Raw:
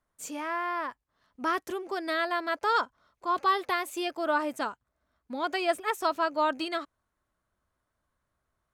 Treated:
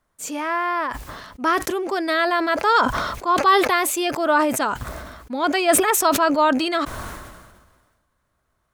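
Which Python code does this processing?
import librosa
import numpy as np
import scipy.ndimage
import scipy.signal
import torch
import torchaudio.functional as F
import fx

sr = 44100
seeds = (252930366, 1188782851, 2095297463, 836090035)

y = fx.sustainer(x, sr, db_per_s=39.0)
y = y * 10.0 ** (8.5 / 20.0)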